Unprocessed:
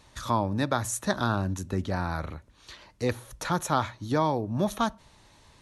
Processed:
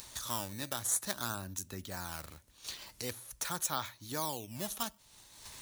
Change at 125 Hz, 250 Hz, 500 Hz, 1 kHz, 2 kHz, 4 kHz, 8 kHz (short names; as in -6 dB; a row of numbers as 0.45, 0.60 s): -16.0, -15.5, -14.5, -12.5, -9.0, -2.0, +2.0 dB